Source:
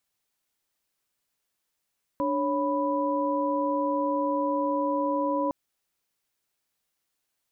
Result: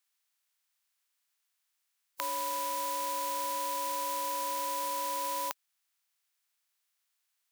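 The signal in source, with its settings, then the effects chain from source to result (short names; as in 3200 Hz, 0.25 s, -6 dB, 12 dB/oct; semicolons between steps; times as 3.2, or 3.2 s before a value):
chord D4/C#5/B5 sine, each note -28 dBFS 3.31 s
spectral contrast lowered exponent 0.44; HPF 1100 Hz 12 dB/oct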